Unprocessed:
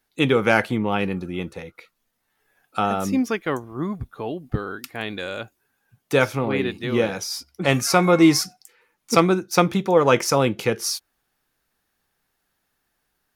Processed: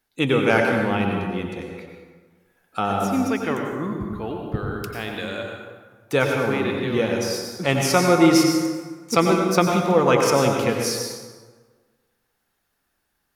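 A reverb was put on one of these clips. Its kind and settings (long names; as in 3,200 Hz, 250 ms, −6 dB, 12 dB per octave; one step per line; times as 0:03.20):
dense smooth reverb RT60 1.5 s, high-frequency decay 0.6×, pre-delay 80 ms, DRR 1.5 dB
level −2 dB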